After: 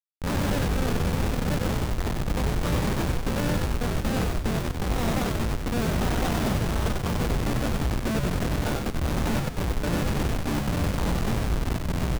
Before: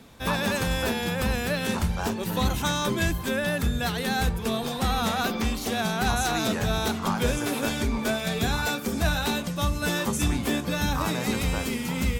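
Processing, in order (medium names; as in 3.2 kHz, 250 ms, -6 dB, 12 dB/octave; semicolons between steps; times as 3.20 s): Schmitt trigger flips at -22 dBFS; on a send: frequency-shifting echo 95 ms, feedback 44%, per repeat -83 Hz, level -3 dB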